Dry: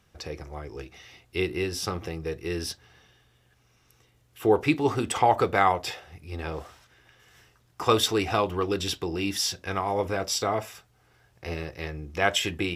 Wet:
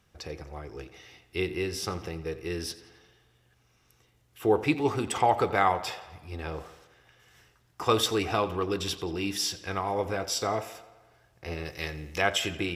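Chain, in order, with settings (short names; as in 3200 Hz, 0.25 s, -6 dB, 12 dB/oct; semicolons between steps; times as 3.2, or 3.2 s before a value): 11.65–12.22 high shelf 2400 Hz +11.5 dB; on a send: tape echo 87 ms, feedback 65%, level -15 dB, low-pass 5600 Hz; on the sum: gain -2.5 dB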